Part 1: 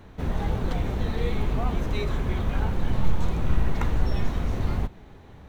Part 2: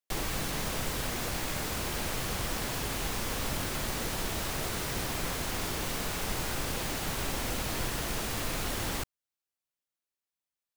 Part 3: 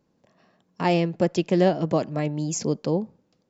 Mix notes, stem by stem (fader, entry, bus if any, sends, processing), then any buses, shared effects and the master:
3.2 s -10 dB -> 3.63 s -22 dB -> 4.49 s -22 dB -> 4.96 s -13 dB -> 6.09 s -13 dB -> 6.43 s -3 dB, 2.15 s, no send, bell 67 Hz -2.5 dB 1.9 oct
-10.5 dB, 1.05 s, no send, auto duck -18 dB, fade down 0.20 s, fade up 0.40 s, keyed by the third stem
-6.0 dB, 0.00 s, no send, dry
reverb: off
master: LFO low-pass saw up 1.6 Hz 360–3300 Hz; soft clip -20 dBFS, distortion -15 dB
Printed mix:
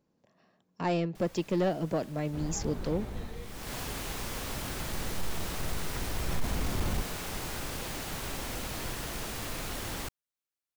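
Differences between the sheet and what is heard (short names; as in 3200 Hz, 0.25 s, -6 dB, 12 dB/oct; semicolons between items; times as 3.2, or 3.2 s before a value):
stem 2 -10.5 dB -> -3.5 dB; master: missing LFO low-pass saw up 1.6 Hz 360–3300 Hz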